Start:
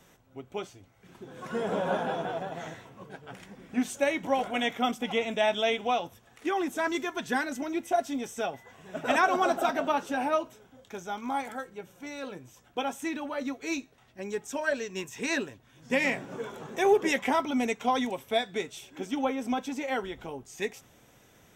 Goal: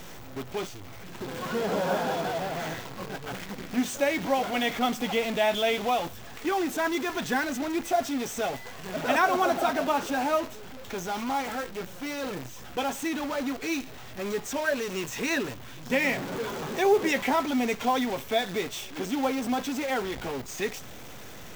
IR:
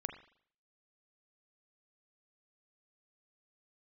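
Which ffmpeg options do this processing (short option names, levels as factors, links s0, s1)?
-af "aeval=exprs='val(0)+0.5*0.0211*sgn(val(0))':c=same,acrusher=bits=7:dc=4:mix=0:aa=0.000001,equalizer=f=10000:w=1.5:g=-6.5"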